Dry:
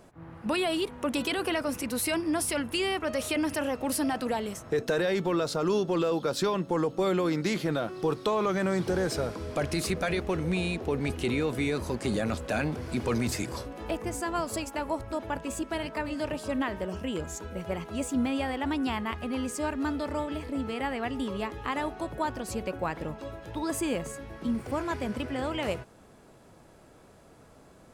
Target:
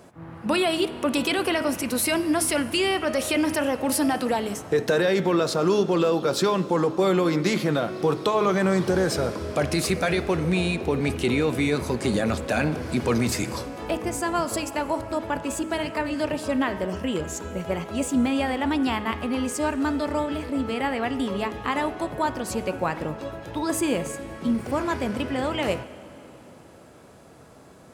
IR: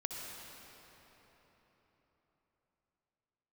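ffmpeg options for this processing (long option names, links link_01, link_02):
-filter_complex "[0:a]highpass=75,bandreject=frequency=106.5:width_type=h:width=4,bandreject=frequency=213:width_type=h:width=4,bandreject=frequency=319.5:width_type=h:width=4,bandreject=frequency=426:width_type=h:width=4,bandreject=frequency=532.5:width_type=h:width=4,bandreject=frequency=639:width_type=h:width=4,bandreject=frequency=745.5:width_type=h:width=4,bandreject=frequency=852:width_type=h:width=4,bandreject=frequency=958.5:width_type=h:width=4,bandreject=frequency=1065:width_type=h:width=4,bandreject=frequency=1171.5:width_type=h:width=4,bandreject=frequency=1278:width_type=h:width=4,bandreject=frequency=1384.5:width_type=h:width=4,bandreject=frequency=1491:width_type=h:width=4,bandreject=frequency=1597.5:width_type=h:width=4,bandreject=frequency=1704:width_type=h:width=4,bandreject=frequency=1810.5:width_type=h:width=4,bandreject=frequency=1917:width_type=h:width=4,bandreject=frequency=2023.5:width_type=h:width=4,bandreject=frequency=2130:width_type=h:width=4,bandreject=frequency=2236.5:width_type=h:width=4,bandreject=frequency=2343:width_type=h:width=4,bandreject=frequency=2449.5:width_type=h:width=4,bandreject=frequency=2556:width_type=h:width=4,bandreject=frequency=2662.5:width_type=h:width=4,bandreject=frequency=2769:width_type=h:width=4,bandreject=frequency=2875.5:width_type=h:width=4,bandreject=frequency=2982:width_type=h:width=4,bandreject=frequency=3088.5:width_type=h:width=4,bandreject=frequency=3195:width_type=h:width=4,bandreject=frequency=3301.5:width_type=h:width=4,bandreject=frequency=3408:width_type=h:width=4,bandreject=frequency=3514.5:width_type=h:width=4,asplit=2[link_01][link_02];[1:a]atrim=start_sample=2205,asetrate=48510,aresample=44100[link_03];[link_02][link_03]afir=irnorm=-1:irlink=0,volume=-12.5dB[link_04];[link_01][link_04]amix=inputs=2:normalize=0,volume=4.5dB"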